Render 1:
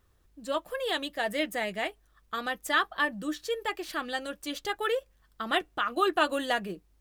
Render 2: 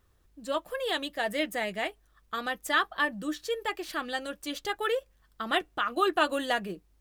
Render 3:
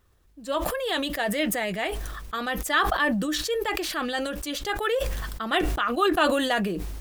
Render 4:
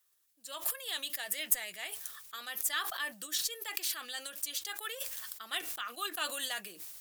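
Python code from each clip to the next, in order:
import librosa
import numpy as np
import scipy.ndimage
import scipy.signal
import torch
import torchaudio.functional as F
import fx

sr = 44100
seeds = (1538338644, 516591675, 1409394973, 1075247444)

y1 = x
y2 = fx.sustainer(y1, sr, db_per_s=29.0)
y2 = F.gain(torch.from_numpy(y2), 2.5).numpy()
y3 = np.diff(y2, prepend=0.0)
y3 = fx.cheby_harmonics(y3, sr, harmonics=(6, 8), levels_db=(-27, -35), full_scale_db=-10.5)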